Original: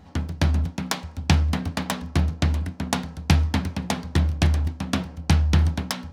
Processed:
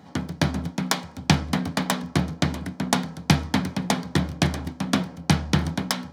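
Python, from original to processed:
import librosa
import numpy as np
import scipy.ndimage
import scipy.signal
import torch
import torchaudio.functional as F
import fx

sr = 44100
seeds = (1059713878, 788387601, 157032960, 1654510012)

y = scipy.signal.sosfilt(scipy.signal.butter(4, 120.0, 'highpass', fs=sr, output='sos'), x)
y = fx.notch(y, sr, hz=2700.0, q=11.0)
y = F.gain(torch.from_numpy(y), 3.0).numpy()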